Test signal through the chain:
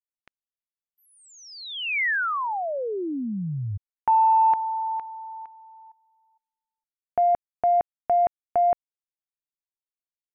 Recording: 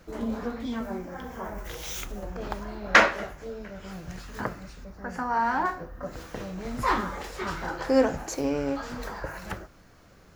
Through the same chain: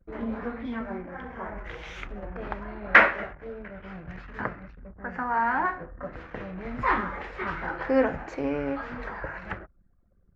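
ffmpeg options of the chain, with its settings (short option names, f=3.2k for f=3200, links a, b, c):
-af "anlmdn=0.0251,asoftclip=type=tanh:threshold=-3.5dB,lowpass=f=2.1k:t=q:w=1.8,volume=-1.5dB"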